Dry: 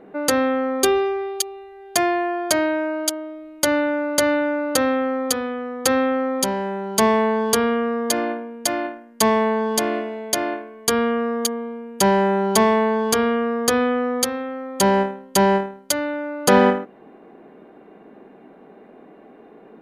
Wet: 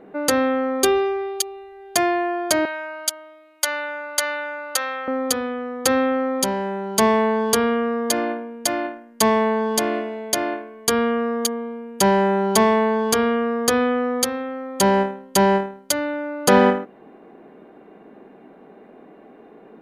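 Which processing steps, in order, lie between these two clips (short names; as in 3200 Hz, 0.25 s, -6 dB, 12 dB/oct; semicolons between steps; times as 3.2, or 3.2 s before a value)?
2.65–5.08 HPF 970 Hz 12 dB/oct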